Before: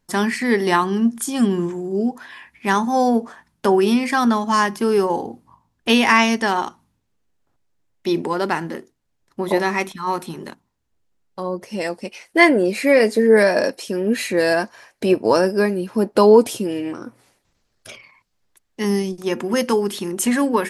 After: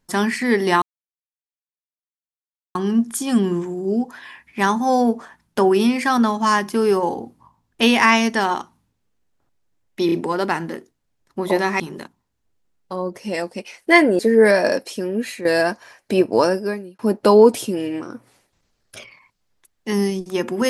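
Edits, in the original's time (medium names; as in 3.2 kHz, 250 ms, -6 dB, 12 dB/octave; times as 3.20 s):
0.82 s: insert silence 1.93 s
8.13 s: stutter 0.03 s, 3 plays
9.81–10.27 s: delete
12.66–13.11 s: delete
13.82–14.37 s: fade out, to -10.5 dB
15.30–15.91 s: fade out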